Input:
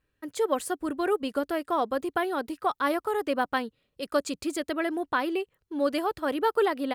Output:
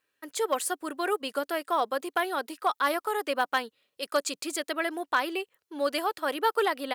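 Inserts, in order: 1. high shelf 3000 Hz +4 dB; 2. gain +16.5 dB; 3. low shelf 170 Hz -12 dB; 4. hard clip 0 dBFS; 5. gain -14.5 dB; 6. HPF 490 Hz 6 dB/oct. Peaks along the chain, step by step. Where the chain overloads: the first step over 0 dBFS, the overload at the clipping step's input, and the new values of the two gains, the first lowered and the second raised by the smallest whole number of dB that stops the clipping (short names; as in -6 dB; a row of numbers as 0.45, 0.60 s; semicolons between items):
-13.0, +3.5, +3.5, 0.0, -14.5, -12.0 dBFS; step 2, 3.5 dB; step 2 +12.5 dB, step 5 -10.5 dB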